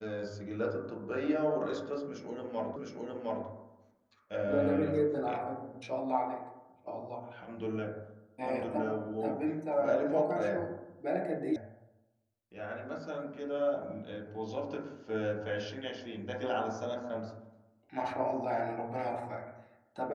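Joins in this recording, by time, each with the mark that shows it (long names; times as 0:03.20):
0:02.76: the same again, the last 0.71 s
0:11.56: cut off before it has died away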